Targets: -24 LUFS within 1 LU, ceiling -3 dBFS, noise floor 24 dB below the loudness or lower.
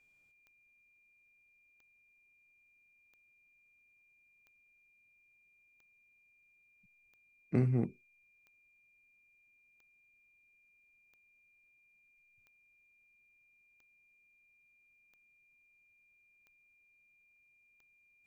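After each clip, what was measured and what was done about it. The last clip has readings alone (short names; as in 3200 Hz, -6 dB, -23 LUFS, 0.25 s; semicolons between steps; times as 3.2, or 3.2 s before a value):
clicks 14; steady tone 2400 Hz; tone level -67 dBFS; loudness -33.5 LUFS; peak -16.5 dBFS; loudness target -24.0 LUFS
-> de-click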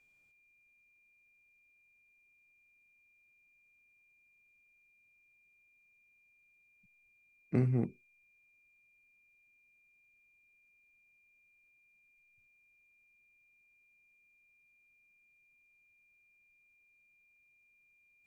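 clicks 0; steady tone 2400 Hz; tone level -67 dBFS
-> notch 2400 Hz, Q 30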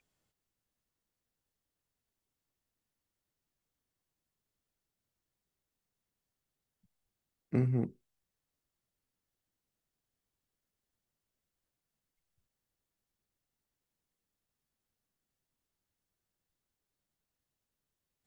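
steady tone none; loudness -33.5 LUFS; peak -16.5 dBFS; loudness target -24.0 LUFS
-> gain +9.5 dB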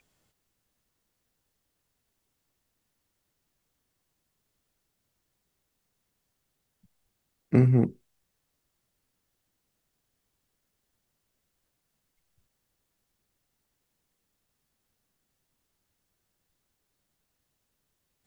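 loudness -24.0 LUFS; peak -7.0 dBFS; noise floor -79 dBFS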